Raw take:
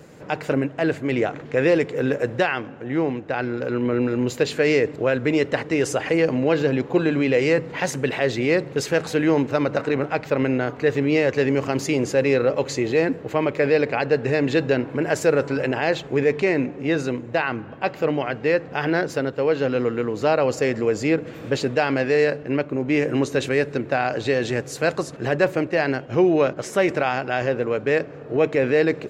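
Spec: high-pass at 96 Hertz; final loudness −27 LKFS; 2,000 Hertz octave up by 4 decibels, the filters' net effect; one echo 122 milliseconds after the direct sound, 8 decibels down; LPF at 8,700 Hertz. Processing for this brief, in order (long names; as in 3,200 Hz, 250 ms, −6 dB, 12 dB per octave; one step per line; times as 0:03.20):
high-pass filter 96 Hz
low-pass filter 8,700 Hz
parametric band 2,000 Hz +5 dB
single-tap delay 122 ms −8 dB
level −6.5 dB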